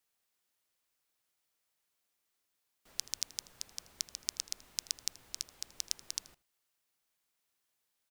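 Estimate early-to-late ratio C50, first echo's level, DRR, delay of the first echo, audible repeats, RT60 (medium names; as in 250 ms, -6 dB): no reverb, -21.0 dB, no reverb, 80 ms, 1, no reverb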